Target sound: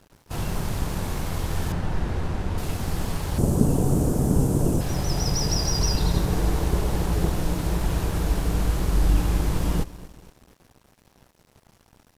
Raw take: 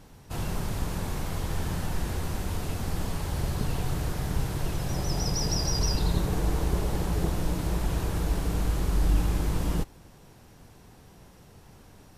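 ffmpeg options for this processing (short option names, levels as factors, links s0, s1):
-filter_complex "[0:a]asettb=1/sr,asplit=3[s0][s1][s2];[s0]atrim=end=3.384[s3];[s1]atrim=start=3.38:end=4.81,asetpts=PTS-STARTPTS,afade=t=in:d=0.004:c=qsin,afade=t=out:st=1.426:d=0.004:c=qsin,equalizer=f=125:t=o:w=1:g=3,equalizer=f=250:t=o:w=1:g=12,equalizer=f=500:t=o:w=1:g=6,equalizer=f=2000:t=o:w=1:g=-12,equalizer=f=4000:t=o:w=1:g=-10,equalizer=f=8000:t=o:w=1:g=8[s4];[s2]atrim=start=4.806[s5];[s3][s4]acrossfade=d=0.004:c1=hsin:c2=qsin[s6];[s6][s5]acrossfade=d=0.004:c1=qsin:c2=hsin,aecho=1:1:238|476|714|952:0.133|0.0653|0.032|0.0157,aeval=exprs='sgn(val(0))*max(abs(val(0))-0.00316,0)':c=same,asettb=1/sr,asplit=3[s7][s8][s9];[s7]atrim=end=1.724[s10];[s8]atrim=start=1.72:end=2.58,asetpts=PTS-STARTPTS,afade=t=in:d=0.004:c=qsin,afade=t=out:st=0.856:d=0.004:c=qsin,aemphasis=mode=reproduction:type=75fm[s11];[s9]atrim=start=2.576[s12];[s10][s11]acrossfade=d=0.004:c1=hsin:c2=qsin[s13];[s13][s12]acrossfade=d=0.004:c1=qsin:c2=hsin,volume=1.58"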